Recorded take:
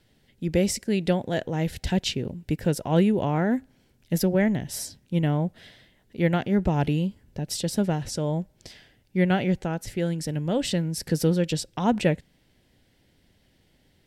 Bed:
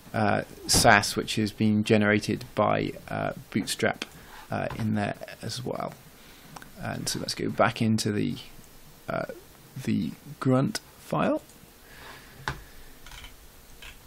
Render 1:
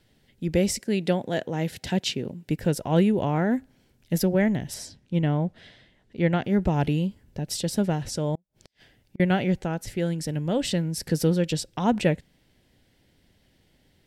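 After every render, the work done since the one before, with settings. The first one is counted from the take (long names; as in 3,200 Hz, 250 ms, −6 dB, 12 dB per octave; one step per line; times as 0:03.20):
0:00.80–0:02.50: high-pass filter 140 Hz
0:04.74–0:06.44: high-frequency loss of the air 57 metres
0:08.35–0:09.20: gate with flip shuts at −27 dBFS, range −39 dB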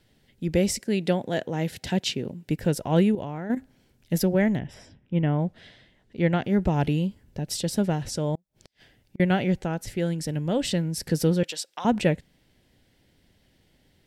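0:03.15–0:03.57: output level in coarse steps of 11 dB
0:04.59–0:05.39: Savitzky-Golay smoothing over 25 samples
0:11.43–0:11.85: high-pass filter 790 Hz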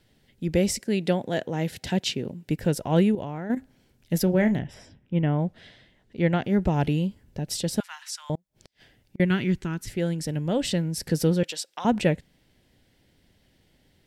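0:04.24–0:04.65: double-tracking delay 33 ms −11 dB
0:07.80–0:08.30: Butterworth high-pass 1,000 Hz 48 dB per octave
0:09.25–0:09.90: flat-topped bell 630 Hz −14.5 dB 1 octave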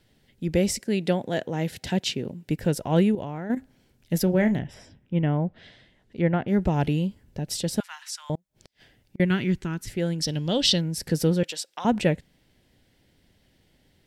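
0:05.35–0:06.48: treble cut that deepens with the level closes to 2,000 Hz, closed at −23 dBFS
0:10.22–0:10.81: flat-topped bell 4,200 Hz +12.5 dB 1.2 octaves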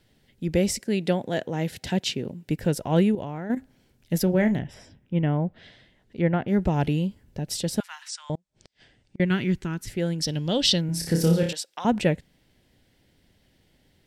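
0:08.08–0:09.31: elliptic low-pass filter 8,800 Hz
0:10.86–0:11.53: flutter between parallel walls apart 5.1 metres, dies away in 0.46 s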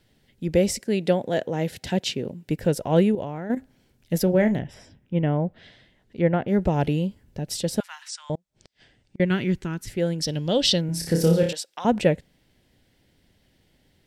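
dynamic equaliser 530 Hz, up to +5 dB, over −38 dBFS, Q 1.7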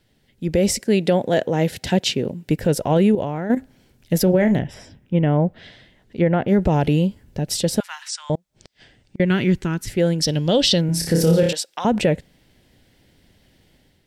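brickwall limiter −14 dBFS, peak gain reduction 8.5 dB
automatic gain control gain up to 6.5 dB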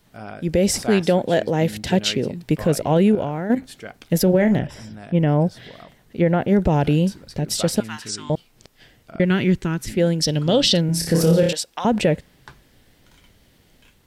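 mix in bed −11.5 dB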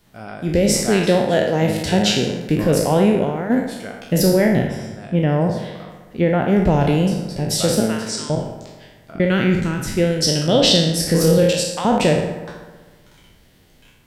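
peak hold with a decay on every bin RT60 0.69 s
bucket-brigade delay 63 ms, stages 1,024, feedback 75%, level −11.5 dB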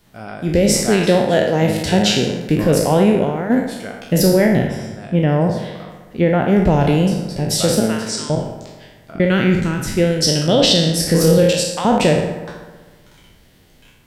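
level +2 dB
brickwall limiter −3 dBFS, peak gain reduction 3 dB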